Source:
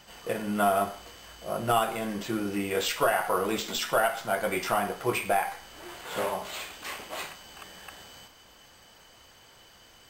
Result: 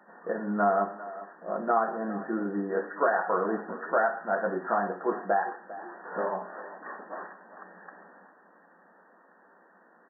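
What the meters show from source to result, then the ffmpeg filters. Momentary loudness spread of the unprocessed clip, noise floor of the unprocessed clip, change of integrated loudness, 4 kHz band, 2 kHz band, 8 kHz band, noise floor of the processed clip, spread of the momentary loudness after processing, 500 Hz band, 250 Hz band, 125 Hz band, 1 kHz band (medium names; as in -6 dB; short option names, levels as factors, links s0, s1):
19 LU, -55 dBFS, -0.5 dB, under -40 dB, -1.5 dB, under -40 dB, -60 dBFS, 16 LU, 0.0 dB, 0.0 dB, no reading, 0.0 dB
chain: -filter_complex "[0:a]asplit=2[s0][s1];[s1]adelay=400,highpass=300,lowpass=3400,asoftclip=type=hard:threshold=0.0841,volume=0.2[s2];[s0][s2]amix=inputs=2:normalize=0,afftfilt=real='re*between(b*sr/4096,170,1900)':imag='im*between(b*sr/4096,170,1900)':win_size=4096:overlap=0.75"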